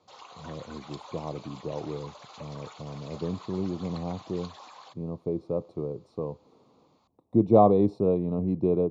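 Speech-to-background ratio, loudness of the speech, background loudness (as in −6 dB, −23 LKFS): 19.5 dB, −28.0 LKFS, −47.5 LKFS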